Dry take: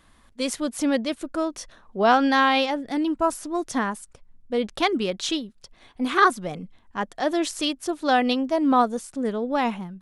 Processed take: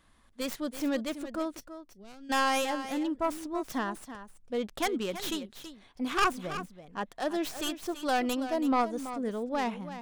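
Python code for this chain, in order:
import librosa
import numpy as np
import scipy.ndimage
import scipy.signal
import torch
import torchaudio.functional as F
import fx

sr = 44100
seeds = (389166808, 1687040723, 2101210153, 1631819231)

y = fx.tracing_dist(x, sr, depth_ms=0.25)
y = fx.tone_stack(y, sr, knobs='10-0-1', at=(1.59, 2.29), fade=0.02)
y = 10.0 ** (-9.5 / 20.0) * np.tanh(y / 10.0 ** (-9.5 / 20.0))
y = y + 10.0 ** (-12.0 / 20.0) * np.pad(y, (int(330 * sr / 1000.0), 0))[:len(y)]
y = F.gain(torch.from_numpy(y), -7.0).numpy()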